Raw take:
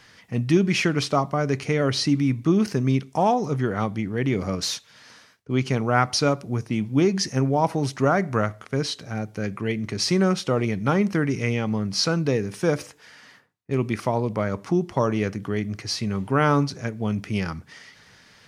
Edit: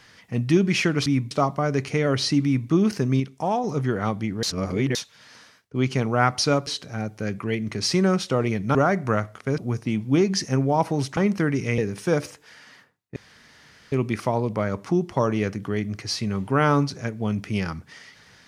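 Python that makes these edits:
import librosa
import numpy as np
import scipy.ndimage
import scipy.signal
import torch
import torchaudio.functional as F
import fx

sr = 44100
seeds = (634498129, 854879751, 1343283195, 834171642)

y = fx.edit(x, sr, fx.duplicate(start_s=2.19, length_s=0.25, to_s=1.06),
    fx.clip_gain(start_s=2.95, length_s=0.44, db=-4.0),
    fx.reverse_span(start_s=4.18, length_s=0.52),
    fx.swap(start_s=6.42, length_s=1.59, other_s=8.84, other_length_s=2.08),
    fx.cut(start_s=11.53, length_s=0.81),
    fx.insert_room_tone(at_s=13.72, length_s=0.76), tone=tone)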